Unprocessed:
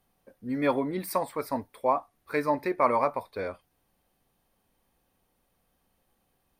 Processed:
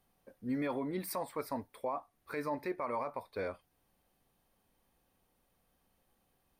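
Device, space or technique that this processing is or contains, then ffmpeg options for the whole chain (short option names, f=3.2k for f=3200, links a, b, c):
stacked limiters: -af "alimiter=limit=-15dB:level=0:latency=1:release=343,alimiter=limit=-21dB:level=0:latency=1:release=33,alimiter=level_in=0.5dB:limit=-24dB:level=0:latency=1:release=380,volume=-0.5dB,volume=-2.5dB"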